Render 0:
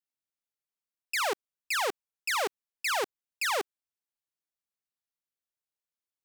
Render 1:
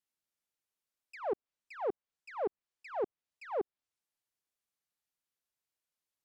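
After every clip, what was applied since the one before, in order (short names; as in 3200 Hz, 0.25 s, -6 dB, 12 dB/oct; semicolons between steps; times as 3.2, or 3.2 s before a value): treble ducked by the level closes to 510 Hz, closed at -26 dBFS; auto swell 0.129 s; gain +2 dB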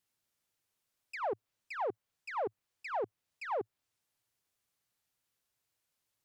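bell 110 Hz +8.5 dB 0.6 oct; limiter -35 dBFS, peak gain reduction 11 dB; gain +7 dB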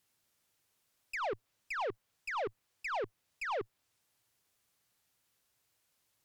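tube stage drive 40 dB, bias 0.25; gain +7 dB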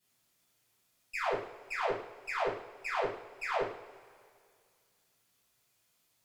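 reverb, pre-delay 3 ms, DRR -10 dB; gain -7 dB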